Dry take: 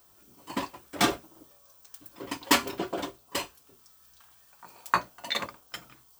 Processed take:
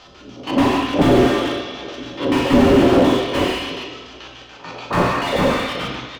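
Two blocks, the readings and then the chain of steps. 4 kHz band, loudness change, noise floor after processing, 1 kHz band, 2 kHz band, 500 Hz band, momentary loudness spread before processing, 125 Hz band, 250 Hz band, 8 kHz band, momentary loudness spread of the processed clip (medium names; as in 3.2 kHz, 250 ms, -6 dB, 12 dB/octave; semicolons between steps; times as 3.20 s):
+8.5 dB, +13.0 dB, -42 dBFS, +11.0 dB, +9.0 dB, +20.0 dB, 19 LU, +22.5 dB, +19.5 dB, -0.5 dB, 21 LU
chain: spectrogram pixelated in time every 50 ms; resonant high shelf 7.5 kHz -6.5 dB, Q 3; transient shaper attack -5 dB, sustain +7 dB; feedback comb 260 Hz, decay 0.18 s, harmonics odd, mix 70%; frequency-shifting echo 390 ms, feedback 41%, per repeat +34 Hz, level -24 dB; LFO low-pass square 6.9 Hz 500–3100 Hz; doubling 40 ms -11 dB; two-slope reverb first 0.9 s, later 3.1 s, from -18 dB, DRR 1 dB; loudness maximiser +24 dB; slew-rate limiter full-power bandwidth 93 Hz; trim +4.5 dB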